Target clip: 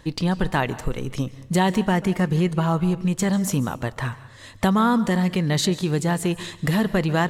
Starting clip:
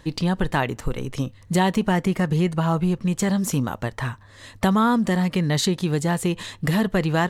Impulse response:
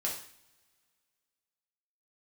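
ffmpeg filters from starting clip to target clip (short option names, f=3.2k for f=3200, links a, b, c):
-filter_complex "[0:a]asplit=2[a][b];[1:a]atrim=start_sample=2205,adelay=139[c];[b][c]afir=irnorm=-1:irlink=0,volume=-20dB[d];[a][d]amix=inputs=2:normalize=0"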